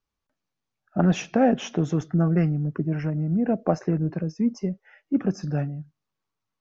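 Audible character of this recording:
background noise floor −84 dBFS
spectral slope −7.5 dB per octave

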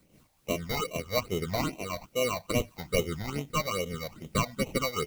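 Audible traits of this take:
aliases and images of a low sample rate 1,700 Hz, jitter 0%
phaser sweep stages 8, 2.4 Hz, lowest notch 360–1,500 Hz
a quantiser's noise floor 12 bits, dither triangular
amplitude modulation by smooth noise

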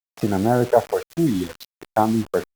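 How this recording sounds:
a quantiser's noise floor 6 bits, dither none
Opus

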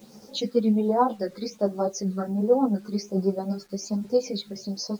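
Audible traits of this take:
tremolo triangle 9.2 Hz, depth 55%
phaser sweep stages 8, 1.3 Hz, lowest notch 800–2,900 Hz
a quantiser's noise floor 10 bits, dither none
a shimmering, thickened sound

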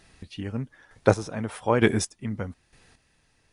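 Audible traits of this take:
chopped level 1.1 Hz, depth 65%, duty 25%
MP2

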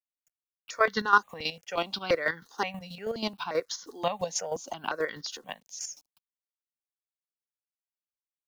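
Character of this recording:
a quantiser's noise floor 10 bits, dither none
chopped level 6.2 Hz, depth 65%, duty 30%
notches that jump at a steady rate 5.7 Hz 350–2,500 Hz

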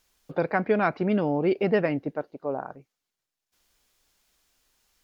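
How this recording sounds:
background noise floor −86 dBFS
spectral slope −3.5 dB per octave

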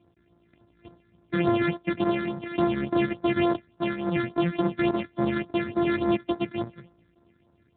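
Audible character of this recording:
a buzz of ramps at a fixed pitch in blocks of 128 samples
phaser sweep stages 8, 3.5 Hz, lowest notch 790–2,800 Hz
AMR narrowband

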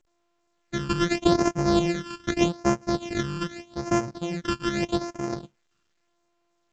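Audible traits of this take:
a buzz of ramps at a fixed pitch in blocks of 128 samples
phaser sweep stages 12, 0.82 Hz, lowest notch 660–3,700 Hz
A-law companding

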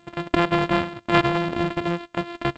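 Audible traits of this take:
a buzz of ramps at a fixed pitch in blocks of 128 samples
G.722

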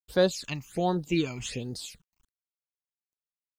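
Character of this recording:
a quantiser's noise floor 12 bits, dither none
phaser sweep stages 8, 1.3 Hz, lowest notch 450–2,500 Hz

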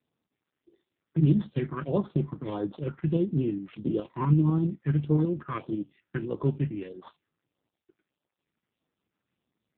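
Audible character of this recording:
a buzz of ramps at a fixed pitch in blocks of 8 samples
tremolo saw up 12 Hz, depth 45%
phaser sweep stages 4, 1.6 Hz, lowest notch 600–2,500 Hz
AMR narrowband

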